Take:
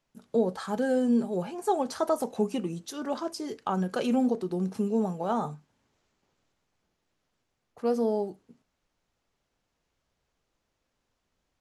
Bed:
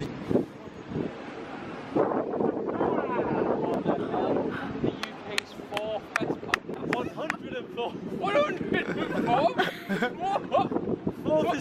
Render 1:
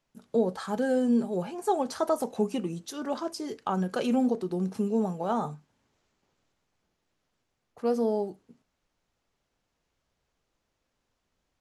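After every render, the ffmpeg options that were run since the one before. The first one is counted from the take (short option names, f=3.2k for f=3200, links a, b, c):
-af anull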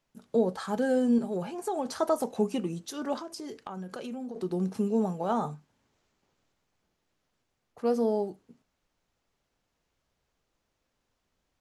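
-filter_complex "[0:a]asettb=1/sr,asplit=3[a][b][c];[a]atrim=end=1.184[d];[b]atrim=start=1.18:end=1.97,asetpts=PTS-STARTPTS,afade=t=in:d=0.004:c=qsin,afade=t=out:st=0.786:d=0.004:c=qsin,acompressor=threshold=-26dB:ratio=6:attack=3.2:release=140:knee=1:detection=peak[e];[c]atrim=start=1.966[f];[d][e]acrossfade=d=0.004:c1=hsin:c2=qsin[g];[g][f]acrossfade=d=0.004:c1=qsin:c2=hsin,asettb=1/sr,asplit=3[h][i][j];[h]atrim=end=3.184[k];[i]atrim=start=3.18:end=4.36,asetpts=PTS-STARTPTS,afade=t=in:d=0.004:c=qsin,afade=t=out:st=1.176:d=0.004:c=qsin,acompressor=threshold=-36dB:ratio=5:attack=3.2:release=140:knee=1:detection=peak[l];[j]atrim=start=4.356[m];[k][l]acrossfade=d=0.004:c1=hsin:c2=qsin[n];[n][m]acrossfade=d=0.004:c1=qsin:c2=hsin"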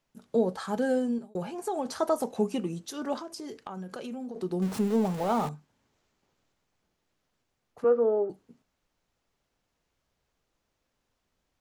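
-filter_complex "[0:a]asettb=1/sr,asplit=3[a][b][c];[a]atrim=end=4.624[d];[b]atrim=start=4.62:end=5.49,asetpts=PTS-STARTPTS,afade=t=in:d=0.004:c=qsin,afade=t=out:st=0.866:d=0.004:c=qsin,aeval=exprs='val(0)+0.5*0.0188*sgn(val(0))':c=same[e];[c]atrim=start=5.486[f];[d][e]acrossfade=d=0.004:c1=hsin:c2=qsin[g];[g][f]acrossfade=d=0.004:c1=qsin:c2=hsin,asettb=1/sr,asplit=3[h][i][j];[h]atrim=end=7.844[k];[i]atrim=start=7.84:end=8.3,asetpts=PTS-STARTPTS,afade=t=in:d=0.004:c=qsin,afade=t=out:st=0.456:d=0.004:c=qsin,highpass=350,equalizer=f=360:t=q:w=4:g=8,equalizer=f=520:t=q:w=4:g=8,equalizer=f=760:t=q:w=4:g=-7,equalizer=f=1.3k:t=q:w=4:g=10,equalizer=f=2.1k:t=q:w=4:g=-4,lowpass=f=2.2k:w=0.5412,lowpass=f=2.2k:w=1.3066[l];[j]atrim=start=8.296[m];[k][l]acrossfade=d=0.004:c1=hsin:c2=qsin[n];[n][m]acrossfade=d=0.004:c1=qsin:c2=hsin,asplit=2[o][p];[o]atrim=end=1.35,asetpts=PTS-STARTPTS,afade=t=out:st=0.91:d=0.44[q];[p]atrim=start=1.35,asetpts=PTS-STARTPTS,afade=t=in:d=0.004:c=hsin[r];[q][r]concat=n=2:v=0:a=1"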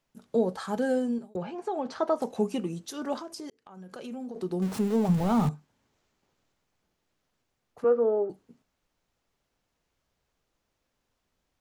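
-filter_complex "[0:a]asettb=1/sr,asplit=3[a][b][c];[a]atrim=end=1.364[d];[b]atrim=start=1.36:end=2.22,asetpts=PTS-STARTPTS,afade=t=in:d=0.004:c=qsin,afade=t=out:st=0.856:d=0.004:c=qsin,highpass=110,lowpass=3.7k[e];[c]atrim=start=2.216[f];[d][e]acrossfade=d=0.004:c1=hsin:c2=qsin[g];[g][f]acrossfade=d=0.004:c1=qsin:c2=hsin,asplit=3[h][i][j];[h]afade=t=out:st=5.08:d=0.02[k];[i]asubboost=boost=6:cutoff=200,afade=t=in:st=5.08:d=0.02,afade=t=out:st=5.49:d=0.02[l];[j]afade=t=in:st=5.49:d=0.02[m];[k][l][m]amix=inputs=3:normalize=0,asplit=2[n][o];[n]atrim=end=3.5,asetpts=PTS-STARTPTS,afade=t=out:st=3.496:d=0.004:c=hsin[p];[o]atrim=start=3.5,asetpts=PTS-STARTPTS,afade=t=in:d=0.66[q];[p][q]concat=n=2:v=0:a=1"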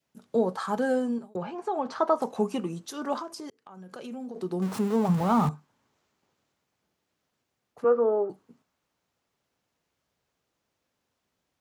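-af "highpass=89,adynamicequalizer=threshold=0.00447:dfrequency=1100:dqfactor=1.7:tfrequency=1100:tqfactor=1.7:attack=5:release=100:ratio=0.375:range=4:mode=boostabove:tftype=bell"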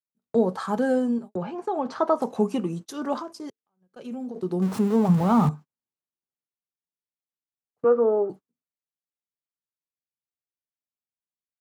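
-af "agate=range=-33dB:threshold=-40dB:ratio=16:detection=peak,equalizer=f=160:w=0.34:g=5"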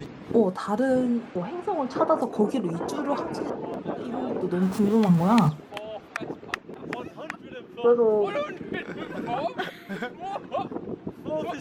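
-filter_complex "[1:a]volume=-5dB[a];[0:a][a]amix=inputs=2:normalize=0"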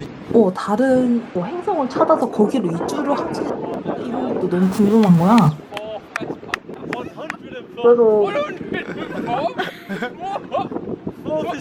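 -af "volume=7.5dB,alimiter=limit=-1dB:level=0:latency=1"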